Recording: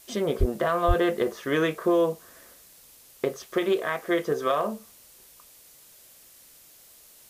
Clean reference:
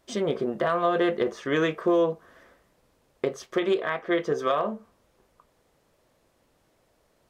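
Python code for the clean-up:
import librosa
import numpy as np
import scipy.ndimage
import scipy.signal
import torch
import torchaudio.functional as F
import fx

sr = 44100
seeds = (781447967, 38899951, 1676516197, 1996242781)

y = fx.fix_deplosive(x, sr, at_s=(0.39, 0.87))
y = fx.noise_reduce(y, sr, print_start_s=6.4, print_end_s=6.9, reduce_db=14.0)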